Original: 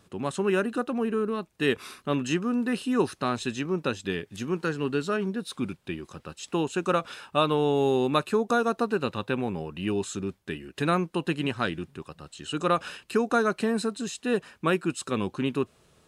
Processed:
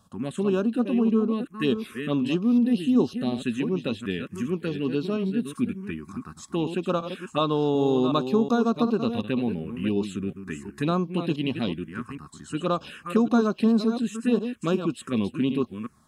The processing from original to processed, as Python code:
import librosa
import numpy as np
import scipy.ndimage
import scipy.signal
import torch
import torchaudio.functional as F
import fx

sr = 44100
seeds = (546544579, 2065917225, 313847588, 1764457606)

y = fx.reverse_delay(x, sr, ms=369, wet_db=-8.5)
y = fx.spec_box(y, sr, start_s=2.67, length_s=0.77, low_hz=890.0, high_hz=2700.0, gain_db=-7)
y = fx.env_phaser(y, sr, low_hz=360.0, high_hz=2000.0, full_db=-21.5)
y = fx.small_body(y, sr, hz=(230.0, 1100.0, 3300.0), ring_ms=45, db=8)